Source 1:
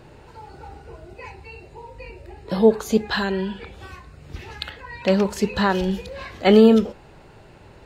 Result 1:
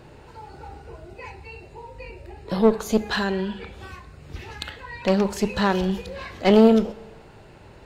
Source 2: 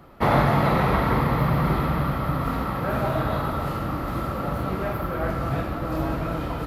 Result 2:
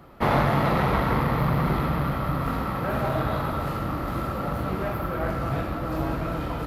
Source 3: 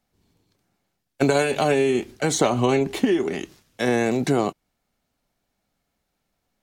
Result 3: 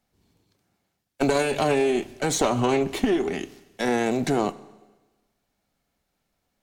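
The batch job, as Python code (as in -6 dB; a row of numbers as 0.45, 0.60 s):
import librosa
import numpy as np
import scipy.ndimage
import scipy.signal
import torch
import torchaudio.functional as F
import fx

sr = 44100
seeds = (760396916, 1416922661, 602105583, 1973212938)

y = fx.diode_clip(x, sr, knee_db=-18.5)
y = fx.rev_schroeder(y, sr, rt60_s=1.2, comb_ms=29, drr_db=17.5)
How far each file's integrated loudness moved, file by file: -2.0, -1.5, -2.0 LU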